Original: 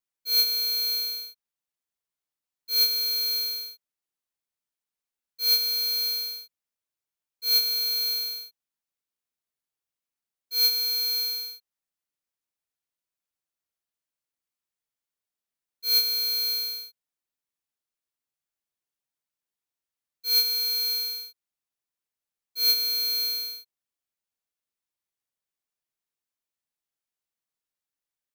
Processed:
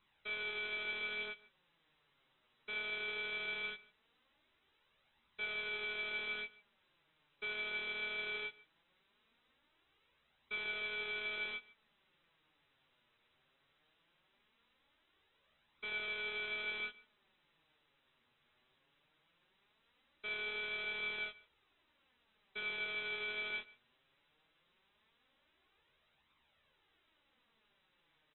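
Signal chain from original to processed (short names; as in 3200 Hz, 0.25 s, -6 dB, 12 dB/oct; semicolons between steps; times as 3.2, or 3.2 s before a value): notch 710 Hz, Q 12; in parallel at +1 dB: negative-ratio compressor -29 dBFS; on the sum: soft clip -30.5 dBFS, distortion -13 dB; flange 0.19 Hz, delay 0.8 ms, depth 7.8 ms, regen +25%; hard clip -37.5 dBFS, distortion -11 dB; brick-wall FIR low-pass 4000 Hz; doubler 13 ms -8 dB; echo 0.145 s -21.5 dB; gain +16 dB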